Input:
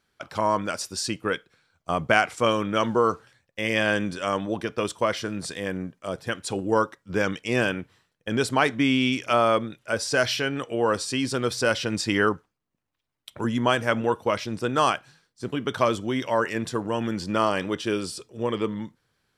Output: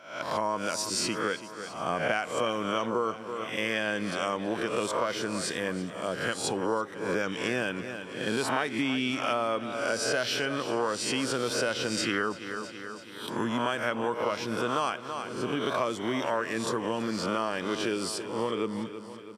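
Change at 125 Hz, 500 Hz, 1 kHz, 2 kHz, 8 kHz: -8.0 dB, -4.5 dB, -5.0 dB, -4.0 dB, -0.5 dB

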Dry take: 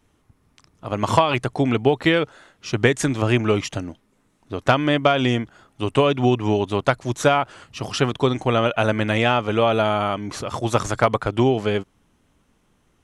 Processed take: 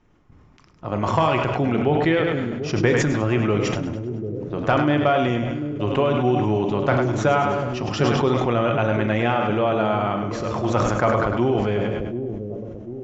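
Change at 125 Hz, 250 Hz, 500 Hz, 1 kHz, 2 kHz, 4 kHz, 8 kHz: +1.0 dB, +1.0 dB, 0.0 dB, -0.5 dB, -2.0 dB, -5.5 dB, -4.5 dB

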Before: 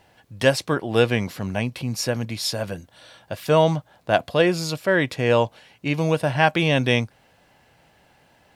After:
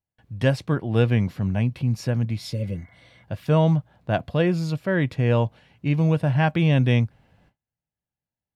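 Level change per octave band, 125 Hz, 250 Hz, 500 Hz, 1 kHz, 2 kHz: +5.5 dB, +1.5 dB, -5.0 dB, -6.0 dB, -6.5 dB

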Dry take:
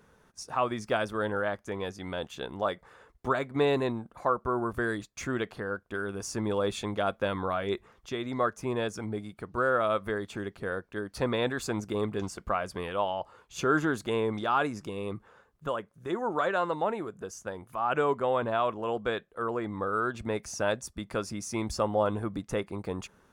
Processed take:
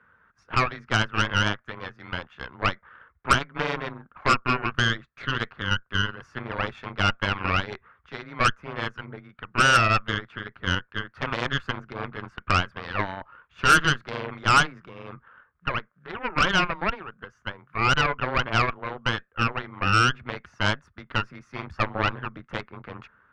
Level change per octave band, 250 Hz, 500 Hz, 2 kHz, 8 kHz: 0.0 dB, -4.5 dB, +11.0 dB, +5.0 dB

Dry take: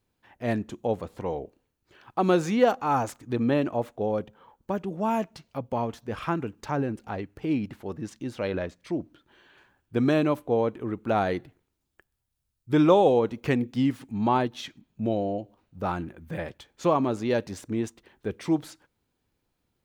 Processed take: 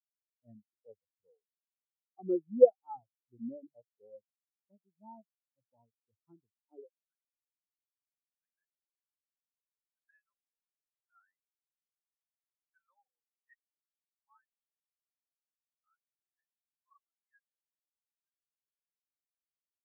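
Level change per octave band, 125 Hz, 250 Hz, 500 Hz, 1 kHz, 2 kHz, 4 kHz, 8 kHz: under -30 dB, -20.5 dB, -9.0 dB, -25.5 dB, under -35 dB, under -40 dB, no reading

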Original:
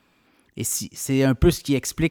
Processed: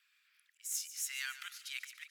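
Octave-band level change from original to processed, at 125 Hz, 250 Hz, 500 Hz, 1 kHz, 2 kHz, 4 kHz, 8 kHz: under -40 dB, under -40 dB, under -40 dB, -18.5 dB, -10.0 dB, -10.5 dB, -11.5 dB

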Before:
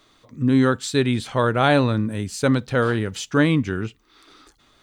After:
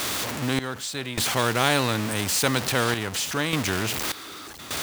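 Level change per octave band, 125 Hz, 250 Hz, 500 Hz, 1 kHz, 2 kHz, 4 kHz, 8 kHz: -7.0 dB, -8.5 dB, -6.0 dB, -2.0 dB, 0.0 dB, +5.5 dB, +8.5 dB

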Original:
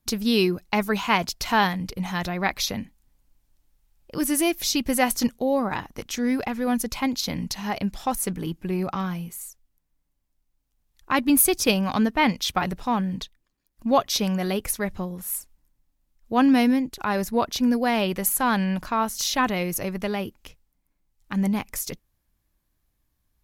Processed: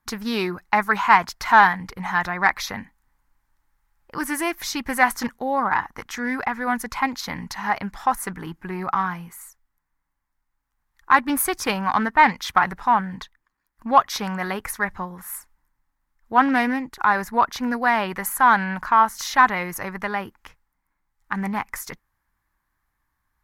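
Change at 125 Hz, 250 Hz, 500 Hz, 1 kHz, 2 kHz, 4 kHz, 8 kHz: -4.5 dB, -4.5 dB, -3.0 dB, +8.0 dB, +7.5 dB, -4.5 dB, -5.0 dB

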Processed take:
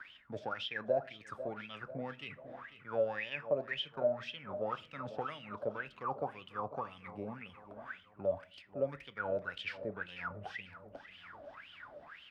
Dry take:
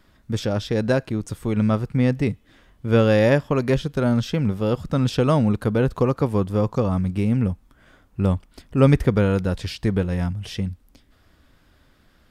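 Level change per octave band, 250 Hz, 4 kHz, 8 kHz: -27.0 dB, -9.5 dB, no reading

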